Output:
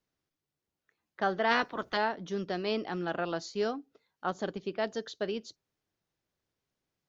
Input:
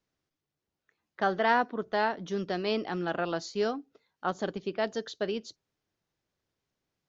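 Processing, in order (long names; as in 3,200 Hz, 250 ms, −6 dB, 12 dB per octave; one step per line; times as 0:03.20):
0:01.50–0:01.96: ceiling on every frequency bin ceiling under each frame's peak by 20 dB
level −2 dB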